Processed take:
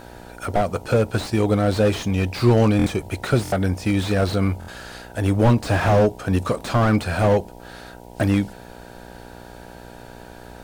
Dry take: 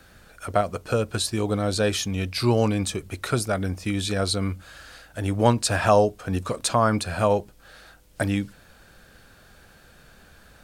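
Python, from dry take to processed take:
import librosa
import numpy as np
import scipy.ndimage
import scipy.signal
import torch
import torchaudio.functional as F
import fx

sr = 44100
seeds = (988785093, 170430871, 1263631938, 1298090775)

y = fx.dmg_buzz(x, sr, base_hz=60.0, harmonics=16, level_db=-48.0, tilt_db=-1, odd_only=False)
y = fx.buffer_glitch(y, sr, at_s=(2.77, 3.43, 4.59), block=1024, repeats=3)
y = fx.slew_limit(y, sr, full_power_hz=58.0)
y = y * librosa.db_to_amplitude(6.0)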